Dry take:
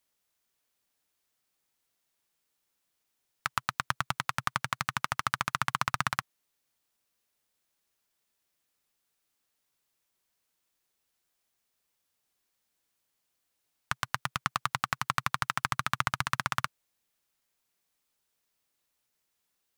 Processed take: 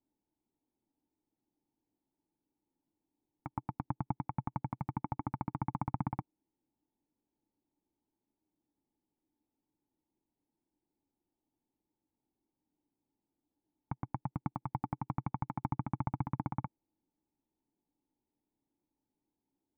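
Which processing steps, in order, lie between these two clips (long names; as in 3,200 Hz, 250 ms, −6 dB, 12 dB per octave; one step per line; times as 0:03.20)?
formant resonators in series u
parametric band 620 Hz −4.5 dB 1.6 octaves
level +16.5 dB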